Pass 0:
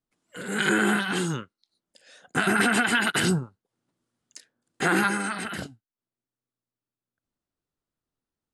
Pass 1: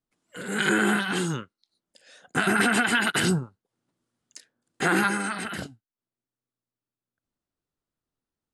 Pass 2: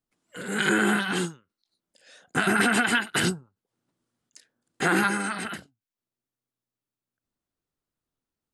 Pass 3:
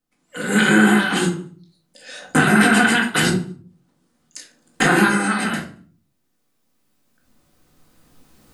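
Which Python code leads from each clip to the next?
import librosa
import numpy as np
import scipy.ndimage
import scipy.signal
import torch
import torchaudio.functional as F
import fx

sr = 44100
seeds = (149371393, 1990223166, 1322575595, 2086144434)

y1 = x
y2 = fx.end_taper(y1, sr, db_per_s=220.0)
y3 = fx.recorder_agc(y2, sr, target_db=-12.5, rise_db_per_s=8.1, max_gain_db=30)
y3 = fx.echo_feedback(y3, sr, ms=75, feedback_pct=48, wet_db=-24.0)
y3 = fx.room_shoebox(y3, sr, seeds[0], volume_m3=340.0, walls='furnished', distance_m=2.0)
y3 = y3 * 10.0 ** (3.5 / 20.0)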